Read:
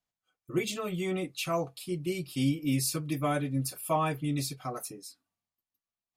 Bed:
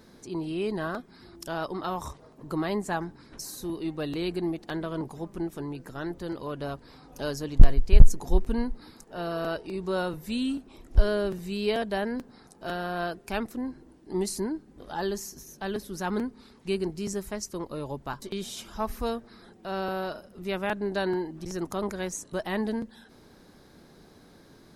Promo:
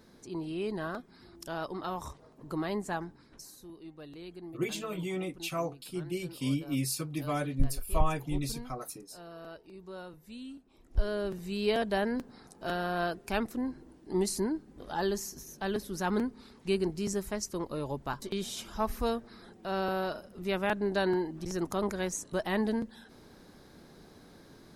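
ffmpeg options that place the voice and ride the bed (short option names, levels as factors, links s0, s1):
-filter_complex "[0:a]adelay=4050,volume=0.708[s0];[1:a]volume=3.35,afade=t=out:st=2.91:d=0.77:silence=0.281838,afade=t=in:st=10.67:d=1.2:silence=0.177828[s1];[s0][s1]amix=inputs=2:normalize=0"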